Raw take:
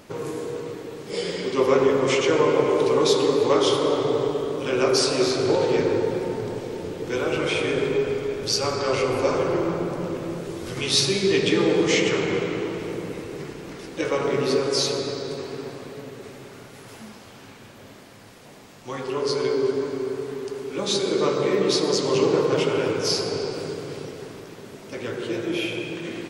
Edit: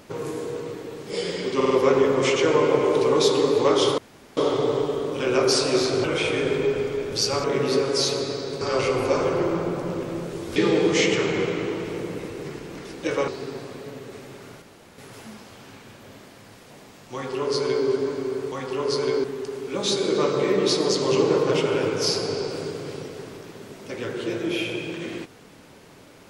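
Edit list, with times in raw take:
1.56 s: stutter 0.05 s, 4 plays
3.83 s: insert room tone 0.39 s
5.50–7.35 s: delete
10.70–11.50 s: delete
14.22–15.39 s: move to 8.75 s
16.73 s: insert room tone 0.36 s
18.89–19.61 s: copy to 20.27 s

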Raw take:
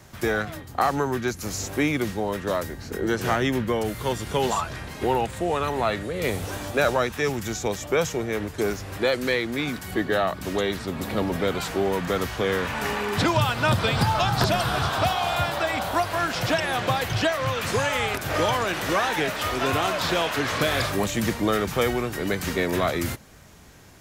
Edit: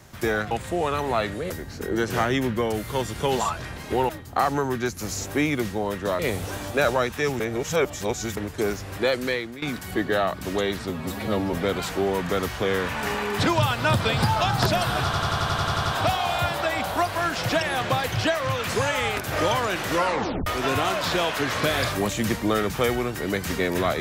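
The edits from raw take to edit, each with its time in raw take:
0.51–2.61 s: swap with 5.20–6.19 s
7.40–8.37 s: reverse
9.05–9.62 s: fade out equal-power, to -16 dB
10.89–11.32 s: stretch 1.5×
14.83 s: stutter 0.09 s, 10 plays
18.92 s: tape stop 0.52 s

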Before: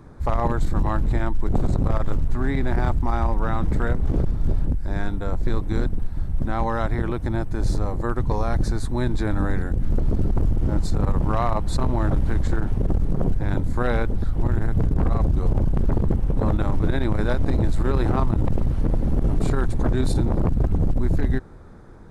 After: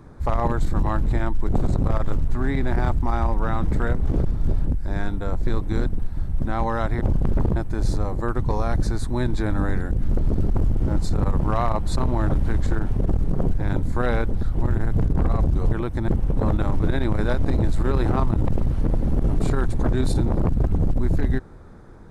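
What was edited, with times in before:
7.01–7.37 s: swap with 15.53–16.08 s

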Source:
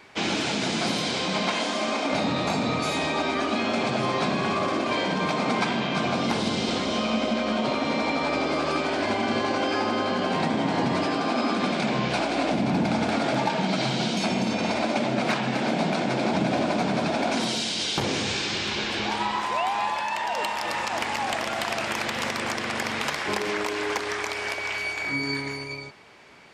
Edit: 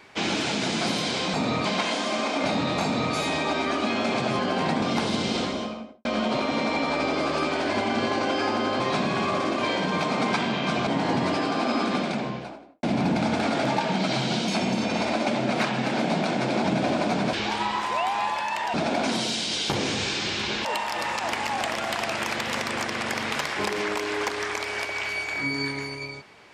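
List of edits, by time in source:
2.52–2.83 s: copy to 1.34 s
4.08–6.15 s: swap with 10.13–10.56 s
6.67–7.38 s: studio fade out
11.54–12.52 s: studio fade out
18.93–20.34 s: move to 17.02 s

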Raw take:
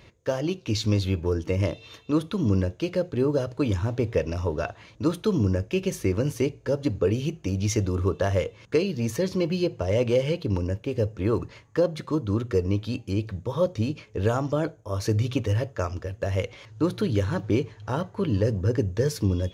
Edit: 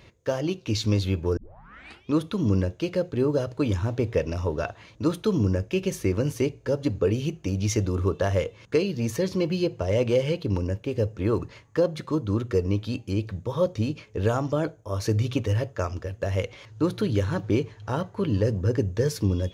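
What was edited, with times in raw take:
1.37 s: tape start 0.77 s

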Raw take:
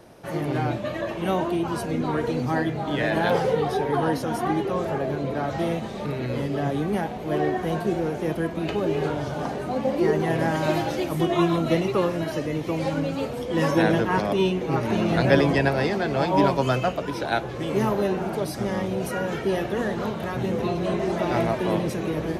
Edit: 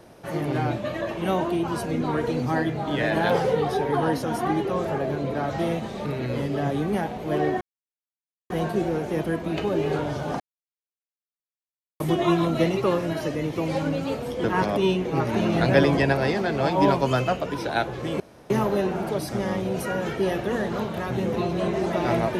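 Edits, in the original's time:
7.61 s: insert silence 0.89 s
9.51–11.11 s: mute
13.55–14.00 s: delete
17.76 s: insert room tone 0.30 s

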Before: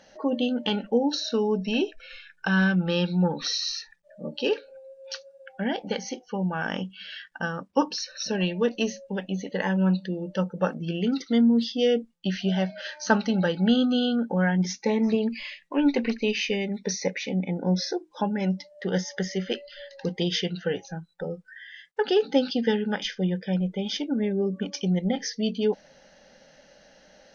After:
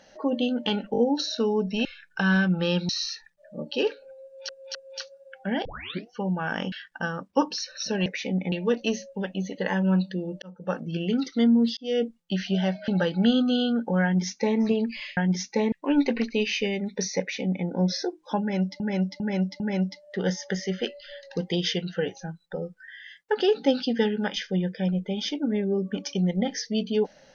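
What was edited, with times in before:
0.92 s: stutter 0.02 s, 4 plays
1.79–2.12 s: delete
3.16–3.55 s: delete
4.89–5.15 s: loop, 3 plays
5.79 s: tape start 0.45 s
6.86–7.12 s: delete
10.36–10.80 s: fade in
11.71–11.98 s: fade in
12.82–13.31 s: delete
14.47–15.02 s: copy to 15.60 s
17.08–17.54 s: copy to 8.46 s
18.28–18.68 s: loop, 4 plays

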